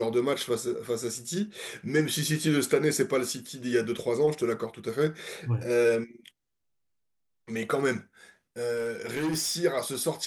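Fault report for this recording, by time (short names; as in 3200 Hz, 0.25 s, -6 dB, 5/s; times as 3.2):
8.76–9.56 clipped -25 dBFS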